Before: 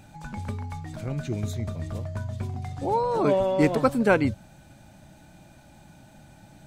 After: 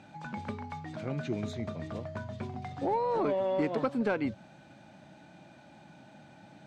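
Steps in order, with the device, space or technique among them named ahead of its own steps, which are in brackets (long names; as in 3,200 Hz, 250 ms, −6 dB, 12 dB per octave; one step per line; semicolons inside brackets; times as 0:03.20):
AM radio (band-pass filter 180–4,100 Hz; downward compressor 6 to 1, threshold −25 dBFS, peak gain reduction 10.5 dB; soft clipping −18.5 dBFS, distortion −23 dB)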